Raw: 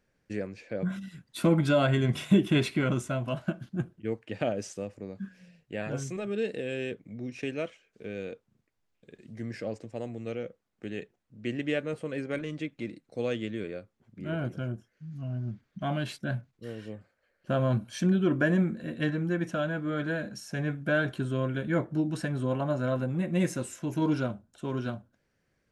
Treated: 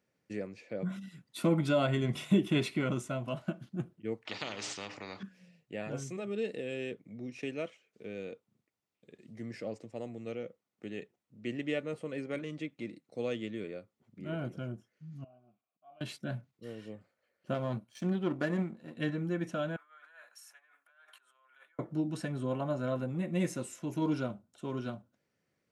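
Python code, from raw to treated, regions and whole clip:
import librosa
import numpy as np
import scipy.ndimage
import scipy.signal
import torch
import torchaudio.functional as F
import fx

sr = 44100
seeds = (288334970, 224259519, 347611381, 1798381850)

y = fx.chain(x, sr, fx.lowpass(hz=5400.0, slope=24),
    fx.hum_notches(base_hz=60, count=7),
    fx.spectral_comp(ratio=4.0), at=(4.25, 5.23))
y = fx.chain(y, sr, fx.auto_swell(attack_ms=771.0),
    fx.vowel_filter(vowel='a'), at=(15.24, 16.01))
y = fx.chain(y, sr, fx.gate_hold(open_db=-32.0, close_db=-40.0, hold_ms=71.0, range_db=-21, attack_ms=1.4, release_ms=100.0),
    fx.power_curve(exponent=1.4), at=(17.54, 18.97))
y = fx.chain(y, sr, fx.peak_eq(hz=4700.0, db=-15.0, octaves=2.3),
    fx.over_compress(threshold_db=-36.0, ratio=-0.5),
    fx.highpass(hz=1100.0, slope=24), at=(19.76, 21.79))
y = scipy.signal.sosfilt(scipy.signal.butter(2, 120.0, 'highpass', fs=sr, output='sos'), y)
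y = fx.notch(y, sr, hz=1600.0, q=9.1)
y = y * 10.0 ** (-4.0 / 20.0)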